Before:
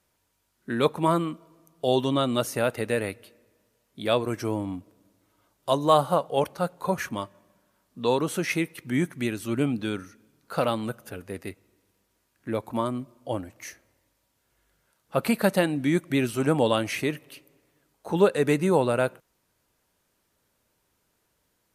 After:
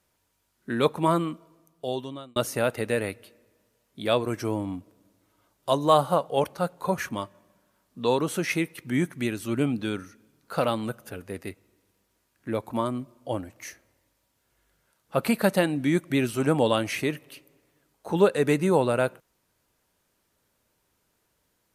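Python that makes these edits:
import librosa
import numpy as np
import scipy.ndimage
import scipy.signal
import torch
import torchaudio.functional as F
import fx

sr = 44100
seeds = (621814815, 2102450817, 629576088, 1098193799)

y = fx.edit(x, sr, fx.fade_out_span(start_s=1.32, length_s=1.04), tone=tone)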